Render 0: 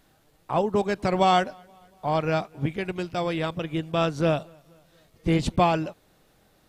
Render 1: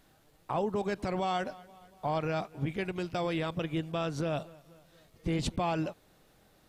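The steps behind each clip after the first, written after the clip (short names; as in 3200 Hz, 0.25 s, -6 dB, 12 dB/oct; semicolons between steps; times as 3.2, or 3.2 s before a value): limiter -20.5 dBFS, peak gain reduction 12 dB; gain -2 dB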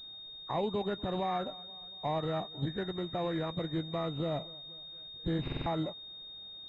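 nonlinear frequency compression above 1100 Hz 1.5:1; stuck buffer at 5.43, samples 2048, times 4; pulse-width modulation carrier 3700 Hz; gain -1.5 dB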